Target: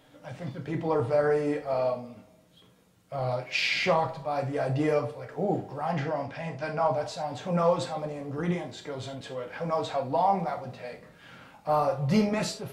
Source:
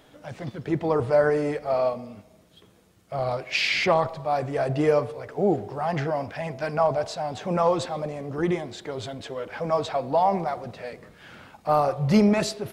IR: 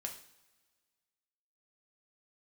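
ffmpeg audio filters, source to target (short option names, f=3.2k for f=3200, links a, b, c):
-filter_complex "[0:a]asettb=1/sr,asplit=3[a][b][c];[a]atrim=end=5.914[d];[b]atrim=start=5.91:end=6.9,asetpts=PTS-STARTPTS,afade=t=in:d=0.004:c=qsin,afade=t=out:st=0.986:d=0.004:c=qsin,lowpass=8.6k[e];[c]atrim=start=6.896[f];[d][e]acrossfade=d=0.004:c1=hsin:c2=qsin[g];[g][f]acrossfade=d=0.004:c1=qsin:c2=hsin[h];[1:a]atrim=start_sample=2205,atrim=end_sample=6174,asetrate=61740,aresample=44100[i];[h][i]afir=irnorm=-1:irlink=0,volume=1.5dB"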